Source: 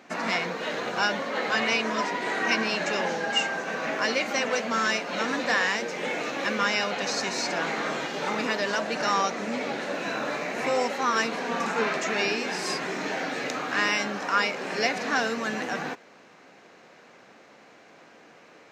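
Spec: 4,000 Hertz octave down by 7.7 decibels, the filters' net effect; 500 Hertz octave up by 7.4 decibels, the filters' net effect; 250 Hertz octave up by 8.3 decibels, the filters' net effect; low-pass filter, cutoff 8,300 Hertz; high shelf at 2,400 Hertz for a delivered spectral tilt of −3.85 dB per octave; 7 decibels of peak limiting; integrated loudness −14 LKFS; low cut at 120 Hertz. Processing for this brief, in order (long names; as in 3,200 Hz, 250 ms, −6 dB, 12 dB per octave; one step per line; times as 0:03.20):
high-pass filter 120 Hz
low-pass filter 8,300 Hz
parametric band 250 Hz +8.5 dB
parametric band 500 Hz +7 dB
high-shelf EQ 2,400 Hz −7 dB
parametric band 4,000 Hz −4.5 dB
level +11.5 dB
brickwall limiter −3.5 dBFS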